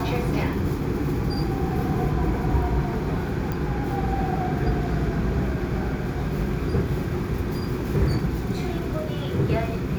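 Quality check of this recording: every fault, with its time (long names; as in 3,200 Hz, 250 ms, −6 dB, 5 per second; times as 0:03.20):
0:03.52: click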